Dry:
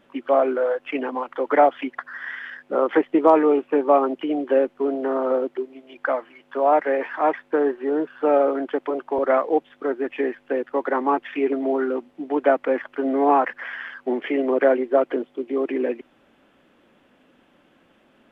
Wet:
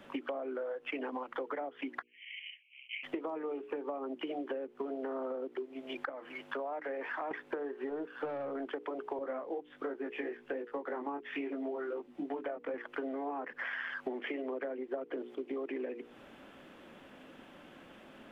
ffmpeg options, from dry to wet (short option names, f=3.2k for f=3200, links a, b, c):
-filter_complex "[0:a]asplit=3[a][b][c];[a]afade=t=out:st=2.01:d=0.02[d];[b]asuperpass=centerf=2600:order=12:qfactor=2.8,afade=t=in:st=2.01:d=0.02,afade=t=out:st=3.03:d=0.02[e];[c]afade=t=in:st=3.03:d=0.02[f];[d][e][f]amix=inputs=3:normalize=0,asettb=1/sr,asplit=3[g][h][i];[g]atrim=end=6.094[j];[h]atrim=start=6.09:end=7.31,asetpts=PTS-STARTPTS,afade=t=in:d=0.004:c=qsin,afade=t=out:st=1.216:d=0.004:c=qsin,acompressor=threshold=-34dB:ratio=2.5:attack=3.2:release=140:knee=1:detection=peak[k];[i]atrim=start=7.306[l];[j][k]acrossfade=d=0.004:c1=hsin:c2=qsin[m];[m][l]acrossfade=d=0.004:c1=qsin:c2=hsin,asettb=1/sr,asplit=3[n][o][p];[n]atrim=end=7.904[q];[o]atrim=start=7.9:end=8.66,asetpts=PTS-STARTPTS,afade=t=in:d=0.004:c=qsin,afade=t=out:st=0.756:d=0.004:c=qsin,aeval=exprs='(tanh(5.62*val(0)+0.25)-tanh(0.25))/5.62':c=same[r];[p]atrim=start=8.656[s];[q][r]acrossfade=d=0.004:c1=hsin:c2=qsin[t];[t][s]acrossfade=d=0.004:c1=qsin:c2=hsin,asettb=1/sr,asplit=3[u][v][w];[u]atrim=end=9.194[x];[v]atrim=start=9.19:end=12.74,asetpts=PTS-STARTPTS,afade=t=in:d=0.004:c=qsin,afade=t=out:st=3.546:d=0.004:c=qsin,flanger=delay=18:depth=3.3:speed=1.3[y];[w]atrim=start=12.736[z];[x][y]acrossfade=d=0.004:c1=hsin:c2=qsin[aa];[aa][z]acrossfade=d=0.004:c1=qsin:c2=hsin,asplit=3[ab][ac][ad];[ab]atrim=end=14.942[ae];[ac]atrim=start=14.938:end=15.352,asetpts=PTS-STARTPTS,volume=11.5dB[af];[ad]atrim=start=15.348[ag];[ae][af]acrossfade=d=0.004:c1=hsin:c2=hsin[ah];[ah][ag]acrossfade=d=0.004:c1=hsin:c2=hsin,acrossover=split=140|440[ai][aj][ak];[ai]acompressor=threshold=-59dB:ratio=4[al];[aj]acompressor=threshold=-30dB:ratio=4[am];[ak]acompressor=threshold=-29dB:ratio=4[an];[al][am][an]amix=inputs=3:normalize=0,bandreject=f=60:t=h:w=6,bandreject=f=120:t=h:w=6,bandreject=f=180:t=h:w=6,bandreject=f=240:t=h:w=6,bandreject=f=300:t=h:w=6,bandreject=f=360:t=h:w=6,bandreject=f=420:t=h:w=6,bandreject=f=480:t=h:w=6,acompressor=threshold=-40dB:ratio=10,volume=4.5dB"